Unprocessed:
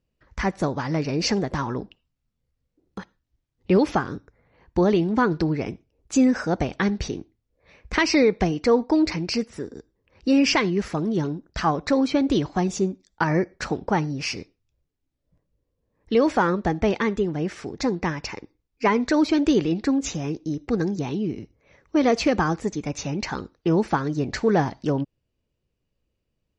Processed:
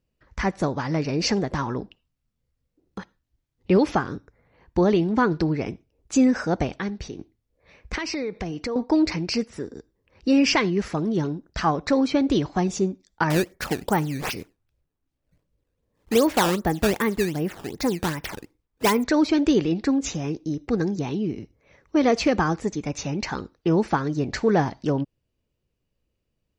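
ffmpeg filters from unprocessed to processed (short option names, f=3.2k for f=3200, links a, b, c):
-filter_complex "[0:a]asettb=1/sr,asplit=3[a][b][c];[a]atrim=end=7.954[d];[b]atrim=start=7.95:end=8.76,asetpts=PTS-STARTPTS,afade=t=in:d=0.004:c=qsin,afade=t=out:st=0.806:d=0.004:c=qsin,acompressor=threshold=-27dB:ratio=4:attack=3.2:release=140:knee=1:detection=peak[e];[c]atrim=start=8.756[f];[d][e]acrossfade=d=0.004:c1=hsin:c2=qsin[g];[g][f]acrossfade=d=0.004:c1=qsin:c2=hsin,asettb=1/sr,asplit=3[h][i][j];[h]atrim=end=13.304[k];[i]atrim=start=13.3:end=19.04,asetpts=PTS-STARTPTS,afade=t=in:d=0.004:c=qsin,afade=t=out:st=5.736:d=0.004:c=qsin,acrusher=samples=12:mix=1:aa=0.000001:lfo=1:lforange=19.2:lforate=2.6[l];[j]atrim=start=19.036[m];[k][l]acrossfade=d=0.004:c1=hsin:c2=qsin[n];[n][m]acrossfade=d=0.004:c1=qsin:c2=hsin,asplit=3[o][p][q];[o]atrim=end=6.792[r];[p]atrim=start=6.788:end=7.192,asetpts=PTS-STARTPTS,volume=-6.5dB[s];[q]atrim=start=7.188[t];[r][s]acrossfade=d=0.004:c1=hsin:c2=hsin[u];[u][t]acrossfade=d=0.004:c1=hsin:c2=hsin"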